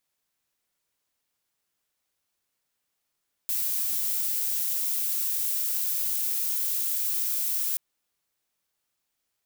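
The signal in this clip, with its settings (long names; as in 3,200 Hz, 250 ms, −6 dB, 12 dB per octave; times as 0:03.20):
noise violet, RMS −27.5 dBFS 4.28 s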